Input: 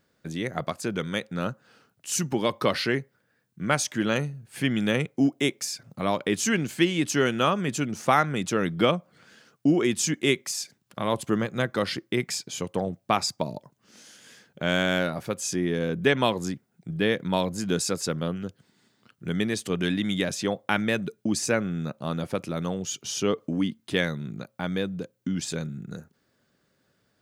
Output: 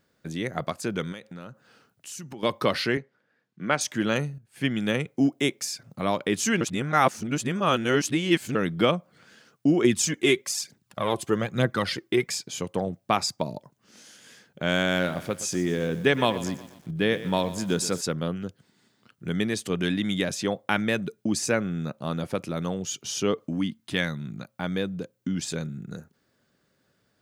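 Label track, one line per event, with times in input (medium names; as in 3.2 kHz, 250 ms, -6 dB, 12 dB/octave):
1.120000	2.430000	compression 4:1, threshold -38 dBFS
2.970000	3.810000	band-pass 190–4400 Hz
4.380000	5.060000	upward expansion, over -42 dBFS
6.610000	8.550000	reverse
9.840000	12.320000	phaser 1.1 Hz
14.830000	18.010000	bit-crushed delay 121 ms, feedback 55%, word length 7-bit, level -14.5 dB
23.440000	24.610000	peaking EQ 430 Hz -7 dB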